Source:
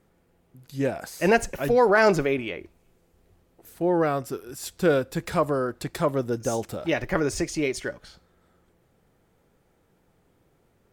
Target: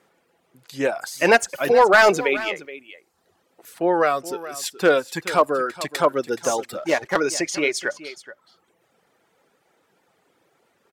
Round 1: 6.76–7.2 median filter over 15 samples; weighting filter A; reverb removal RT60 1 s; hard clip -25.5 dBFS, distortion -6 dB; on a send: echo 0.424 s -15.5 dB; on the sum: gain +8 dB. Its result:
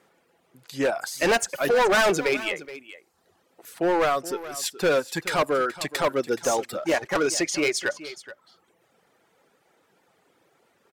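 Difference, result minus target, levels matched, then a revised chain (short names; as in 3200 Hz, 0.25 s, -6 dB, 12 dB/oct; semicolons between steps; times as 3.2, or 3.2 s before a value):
hard clip: distortion +12 dB
6.76–7.2 median filter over 15 samples; weighting filter A; reverb removal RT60 1 s; hard clip -15 dBFS, distortion -17 dB; on a send: echo 0.424 s -15.5 dB; on the sum: gain +8 dB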